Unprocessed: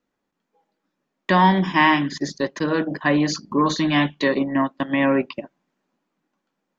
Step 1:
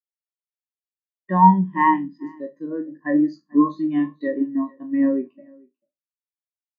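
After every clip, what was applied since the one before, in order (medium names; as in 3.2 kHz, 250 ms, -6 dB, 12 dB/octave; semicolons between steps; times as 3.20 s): spectral sustain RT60 0.47 s; delay 441 ms -11 dB; spectral contrast expander 2.5:1; trim -1 dB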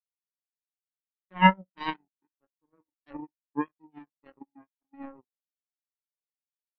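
low-pass 2.5 kHz; power-law waveshaper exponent 3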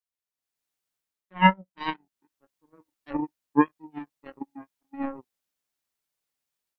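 level rider gain up to 12 dB; trim -1 dB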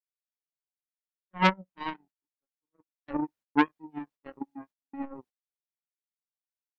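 gate -52 dBFS, range -30 dB; treble shelf 3.1 kHz -8.5 dB; transformer saturation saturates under 1.5 kHz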